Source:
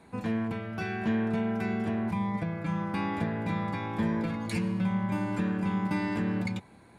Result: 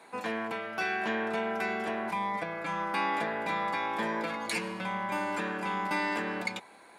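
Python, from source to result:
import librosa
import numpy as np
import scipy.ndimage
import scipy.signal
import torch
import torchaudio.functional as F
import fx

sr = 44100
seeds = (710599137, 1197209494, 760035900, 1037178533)

y = scipy.signal.sosfilt(scipy.signal.butter(2, 540.0, 'highpass', fs=sr, output='sos'), x)
y = y * 10.0 ** (6.0 / 20.0)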